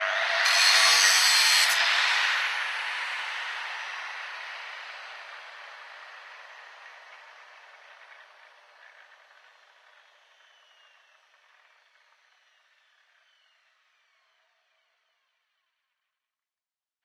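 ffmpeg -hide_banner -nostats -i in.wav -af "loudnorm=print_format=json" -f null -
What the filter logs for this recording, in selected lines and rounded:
"input_i" : "-21.8",
"input_tp" : "-6.7",
"input_lra" : "24.5",
"input_thresh" : "-37.2",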